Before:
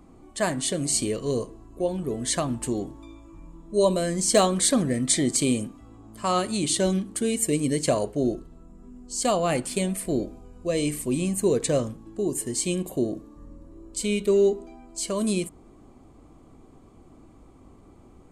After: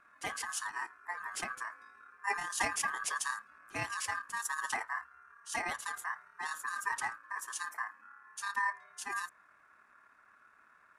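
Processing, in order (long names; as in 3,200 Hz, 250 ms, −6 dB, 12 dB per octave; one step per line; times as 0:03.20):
time stretch by overlap-add 0.6×, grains 55 ms
ring modulation 1,400 Hz
level −8.5 dB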